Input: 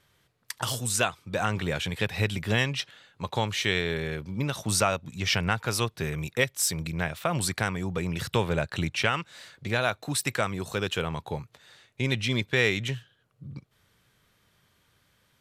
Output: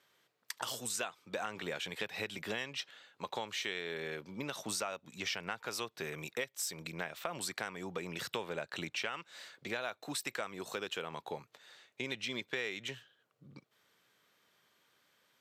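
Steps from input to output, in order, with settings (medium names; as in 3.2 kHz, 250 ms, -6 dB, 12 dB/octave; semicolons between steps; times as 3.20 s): high-pass 300 Hz 12 dB/octave; peaking EQ 10 kHz -9 dB 0.23 oct; compression 4:1, threshold -32 dBFS, peak gain reduction 11.5 dB; trim -3.5 dB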